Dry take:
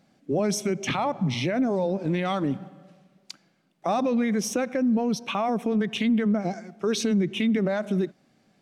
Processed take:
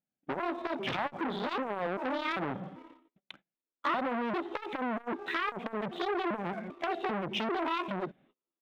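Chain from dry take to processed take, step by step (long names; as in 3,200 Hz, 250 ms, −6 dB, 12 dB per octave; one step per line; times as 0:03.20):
pitch shifter gated in a rhythm +9 semitones, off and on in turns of 394 ms
downsampling to 8,000 Hz
noise gate −56 dBFS, range −29 dB
leveller curve on the samples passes 1
downward compressor 6 to 1, threshold −23 dBFS, peak gain reduction 5 dB
saturating transformer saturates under 1,800 Hz
level −1.5 dB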